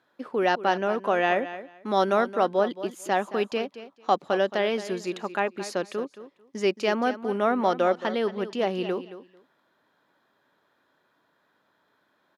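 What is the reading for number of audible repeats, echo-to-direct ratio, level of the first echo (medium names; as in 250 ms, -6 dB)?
2, -13.5 dB, -13.5 dB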